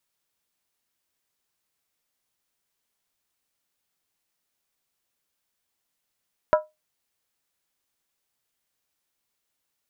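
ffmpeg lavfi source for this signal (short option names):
-f lavfi -i "aevalsrc='0.266*pow(10,-3*t/0.2)*sin(2*PI*616*t)+0.15*pow(10,-3*t/0.158)*sin(2*PI*981.9*t)+0.0841*pow(10,-3*t/0.137)*sin(2*PI*1315.8*t)+0.0473*pow(10,-3*t/0.132)*sin(2*PI*1414.3*t)+0.0266*pow(10,-3*t/0.123)*sin(2*PI*1634.2*t)':d=0.63:s=44100"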